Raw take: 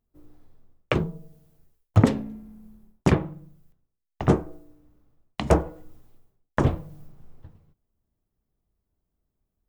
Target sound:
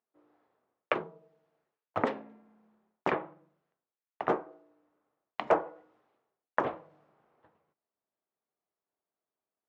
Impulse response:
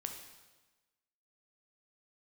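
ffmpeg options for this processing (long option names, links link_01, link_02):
-af "highpass=600,lowpass=2000"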